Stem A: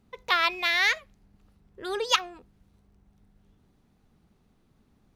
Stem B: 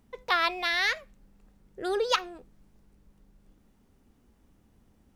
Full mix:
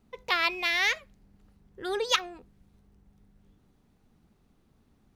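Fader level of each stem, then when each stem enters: -1.5, -9.5 dB; 0.00, 0.00 s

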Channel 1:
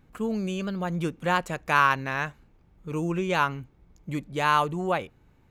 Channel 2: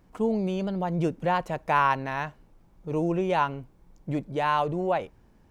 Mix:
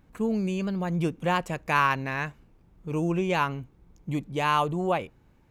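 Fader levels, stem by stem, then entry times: -2.0, -7.0 dB; 0.00, 0.00 s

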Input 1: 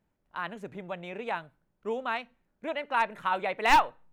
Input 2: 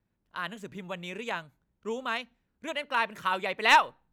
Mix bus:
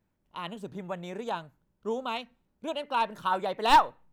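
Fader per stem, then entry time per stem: -2.0, -4.0 dB; 0.00, 0.00 s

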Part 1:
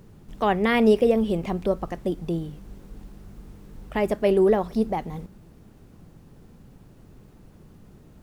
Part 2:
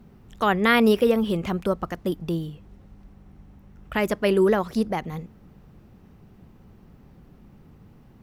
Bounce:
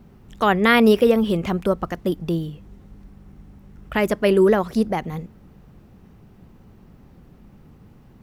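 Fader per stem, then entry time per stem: -11.5, +2.0 dB; 0.00, 0.00 s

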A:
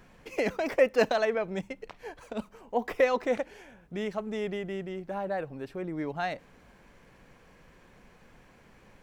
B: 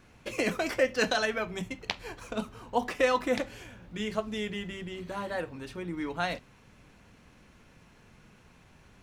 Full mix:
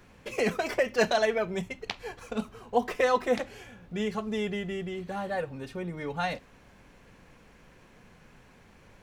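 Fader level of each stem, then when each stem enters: -1.0, -2.5 dB; 0.00, 0.00 s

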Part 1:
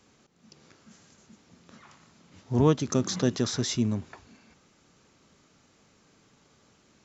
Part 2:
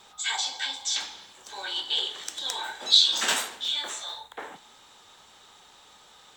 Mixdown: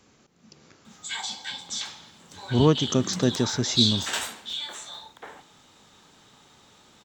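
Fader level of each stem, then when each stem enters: +2.5, -4.0 dB; 0.00, 0.85 s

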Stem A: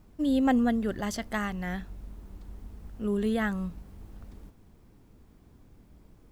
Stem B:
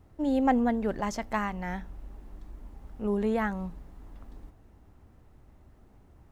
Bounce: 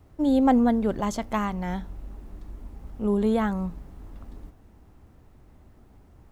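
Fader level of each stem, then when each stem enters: -5.0, +2.5 dB; 0.00, 0.00 s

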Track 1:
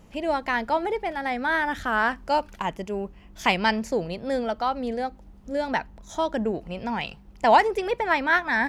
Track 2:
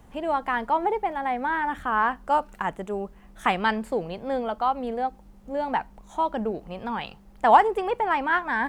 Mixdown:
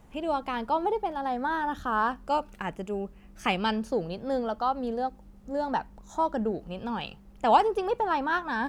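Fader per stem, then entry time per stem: -10.0, -4.0 dB; 0.00, 0.00 s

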